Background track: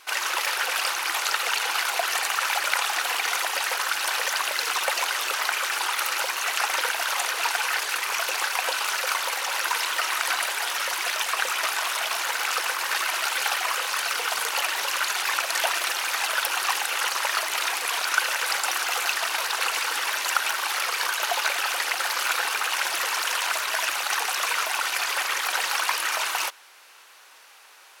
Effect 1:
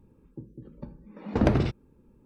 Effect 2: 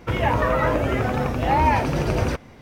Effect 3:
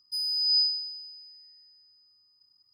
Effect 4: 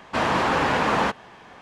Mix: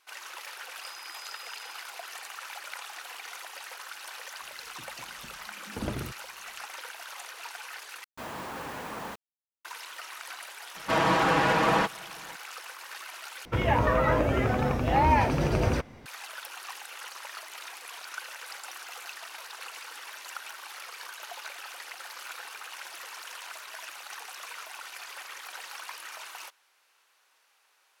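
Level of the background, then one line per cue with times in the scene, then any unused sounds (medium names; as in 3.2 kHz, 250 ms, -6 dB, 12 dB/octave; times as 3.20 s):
background track -16.5 dB
0.71 s: add 3 -13 dB + compression, threshold -36 dBFS
4.41 s: add 1 -12 dB
8.04 s: replace with 4 -17 dB + bit crusher 5-bit
10.75 s: add 4 -3.5 dB + comb 6.2 ms
13.45 s: replace with 2 -3.5 dB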